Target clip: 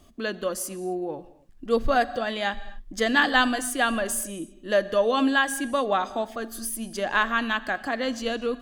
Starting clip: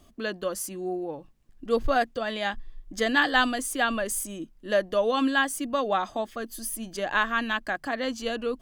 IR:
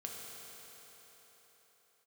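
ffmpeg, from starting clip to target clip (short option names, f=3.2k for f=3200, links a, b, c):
-filter_complex "[0:a]asplit=2[a][b];[1:a]atrim=start_sample=2205,afade=t=out:st=0.19:d=0.01,atrim=end_sample=8820,asetrate=23373,aresample=44100[c];[b][c]afir=irnorm=-1:irlink=0,volume=-11.5dB[d];[a][d]amix=inputs=2:normalize=0"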